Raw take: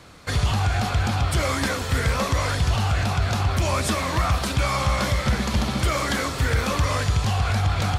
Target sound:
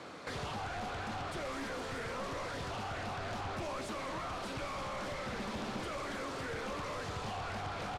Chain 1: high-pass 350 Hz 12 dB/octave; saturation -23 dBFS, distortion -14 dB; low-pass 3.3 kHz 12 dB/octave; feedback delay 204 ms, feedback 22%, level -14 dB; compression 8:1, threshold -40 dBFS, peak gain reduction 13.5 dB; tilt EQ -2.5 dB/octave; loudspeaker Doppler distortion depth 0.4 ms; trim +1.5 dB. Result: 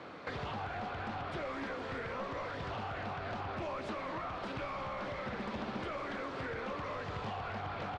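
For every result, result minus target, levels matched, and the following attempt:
8 kHz band -13.5 dB; saturation: distortion -8 dB
high-pass 350 Hz 12 dB/octave; saturation -23 dBFS, distortion -14 dB; low-pass 11 kHz 12 dB/octave; feedback delay 204 ms, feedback 22%, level -14 dB; compression 8:1, threshold -40 dBFS, peak gain reduction 14 dB; tilt EQ -2.5 dB/octave; loudspeaker Doppler distortion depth 0.4 ms; trim +1.5 dB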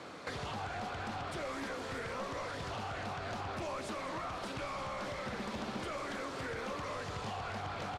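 saturation: distortion -8 dB
high-pass 350 Hz 12 dB/octave; saturation -33 dBFS, distortion -7 dB; low-pass 11 kHz 12 dB/octave; feedback delay 204 ms, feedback 22%, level -14 dB; compression 8:1, threshold -40 dBFS, peak gain reduction 7 dB; tilt EQ -2.5 dB/octave; loudspeaker Doppler distortion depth 0.4 ms; trim +1.5 dB

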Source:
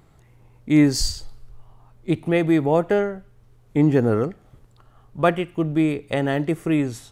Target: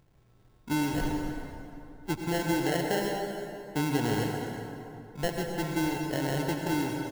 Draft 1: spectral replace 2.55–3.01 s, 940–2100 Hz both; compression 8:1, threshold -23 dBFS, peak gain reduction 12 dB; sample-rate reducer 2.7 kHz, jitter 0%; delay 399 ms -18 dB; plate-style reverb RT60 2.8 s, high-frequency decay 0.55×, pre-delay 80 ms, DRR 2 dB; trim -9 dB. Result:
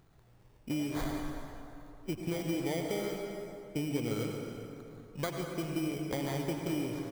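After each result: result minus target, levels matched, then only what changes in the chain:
compression: peak gain reduction +6 dB; sample-rate reducer: distortion -8 dB
change: compression 8:1, threshold -16 dBFS, peak gain reduction 6 dB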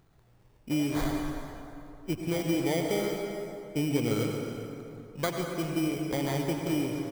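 sample-rate reducer: distortion -8 dB
change: sample-rate reducer 1.2 kHz, jitter 0%

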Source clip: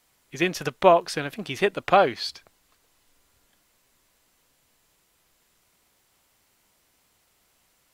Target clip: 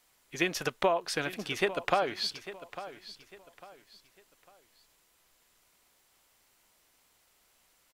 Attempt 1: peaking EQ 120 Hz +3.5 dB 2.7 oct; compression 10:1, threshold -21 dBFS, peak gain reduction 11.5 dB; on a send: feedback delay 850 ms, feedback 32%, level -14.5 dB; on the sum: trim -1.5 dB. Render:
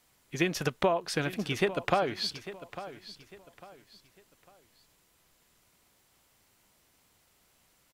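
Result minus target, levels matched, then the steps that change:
125 Hz band +7.5 dB
change: peaking EQ 120 Hz -6 dB 2.7 oct

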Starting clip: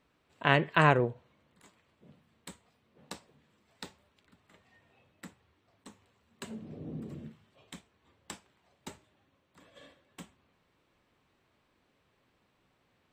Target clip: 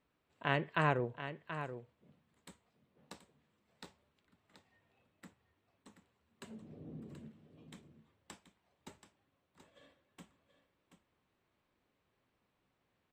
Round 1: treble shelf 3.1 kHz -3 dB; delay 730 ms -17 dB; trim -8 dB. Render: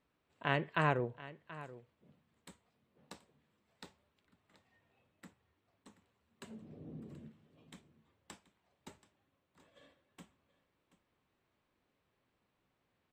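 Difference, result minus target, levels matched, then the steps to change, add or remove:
echo-to-direct -6.5 dB
change: delay 730 ms -10.5 dB

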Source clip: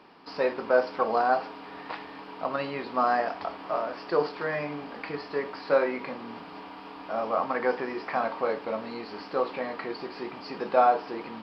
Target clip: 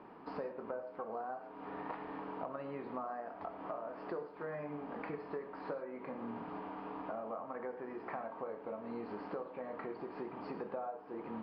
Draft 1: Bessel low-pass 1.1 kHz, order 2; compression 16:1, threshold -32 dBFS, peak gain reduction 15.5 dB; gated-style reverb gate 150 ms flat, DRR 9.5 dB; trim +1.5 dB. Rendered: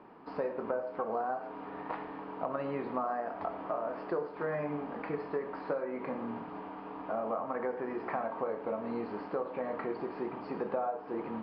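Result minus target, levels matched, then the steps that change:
compression: peak gain reduction -8 dB
change: compression 16:1, threshold -40.5 dBFS, peak gain reduction 23.5 dB

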